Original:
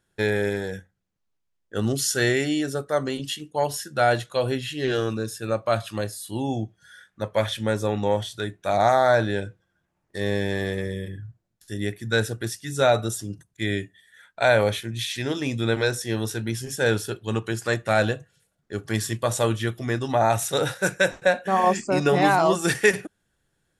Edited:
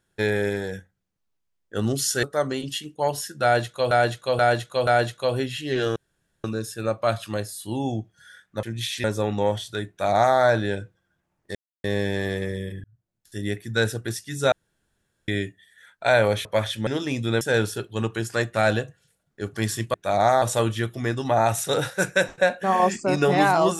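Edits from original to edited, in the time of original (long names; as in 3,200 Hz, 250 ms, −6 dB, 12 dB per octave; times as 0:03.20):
0:02.23–0:02.79: remove
0:03.99–0:04.47: repeat, 4 plays
0:05.08: splice in room tone 0.48 s
0:07.27–0:07.69: swap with 0:14.81–0:15.22
0:08.54–0:09.02: duplicate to 0:19.26
0:10.20: splice in silence 0.29 s
0:11.20–0:11.74: fade in
0:12.88–0:13.64: fill with room tone
0:15.76–0:16.73: remove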